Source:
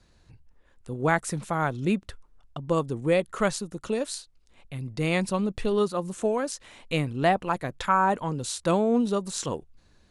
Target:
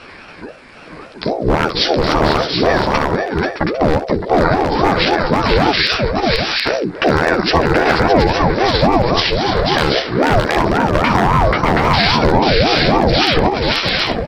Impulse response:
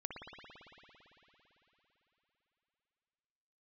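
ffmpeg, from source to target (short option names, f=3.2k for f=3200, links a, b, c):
-af "highpass=f=220:p=1,aecho=1:1:6.5:0.61,atempo=1.5,equalizer=f=6.7k:t=o:w=0.21:g=-14.5,acompressor=threshold=-46dB:ratio=2,asetrate=20815,aresample=44100,aeval=exprs='0.0316*(abs(mod(val(0)/0.0316+3,4)-2)-1)':c=same,tiltshelf=f=640:g=-4.5,asoftclip=type=tanh:threshold=-15dB,aecho=1:1:60|61|486|615|725|801:0.106|0.158|0.501|0.282|0.562|0.178,alimiter=level_in=31.5dB:limit=-1dB:release=50:level=0:latency=1,aeval=exprs='val(0)*sin(2*PI*420*n/s+420*0.45/3.7*sin(2*PI*3.7*n/s))':c=same"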